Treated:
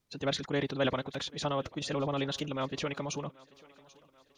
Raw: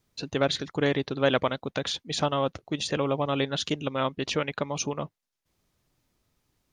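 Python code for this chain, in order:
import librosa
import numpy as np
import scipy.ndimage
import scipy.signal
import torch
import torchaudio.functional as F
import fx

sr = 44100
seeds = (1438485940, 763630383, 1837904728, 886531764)

y = fx.transient(x, sr, attack_db=-2, sustain_db=7)
y = fx.stretch_vocoder(y, sr, factor=0.65)
y = fx.echo_thinned(y, sr, ms=786, feedback_pct=53, hz=230.0, wet_db=-22.5)
y = F.gain(torch.from_numpy(y), -5.0).numpy()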